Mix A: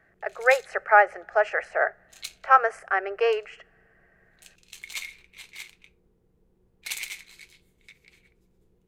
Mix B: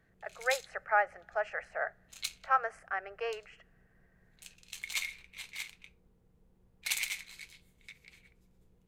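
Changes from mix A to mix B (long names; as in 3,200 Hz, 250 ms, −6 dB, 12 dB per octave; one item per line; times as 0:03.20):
speech −10.5 dB
master: add parametric band 370 Hz −8.5 dB 0.58 octaves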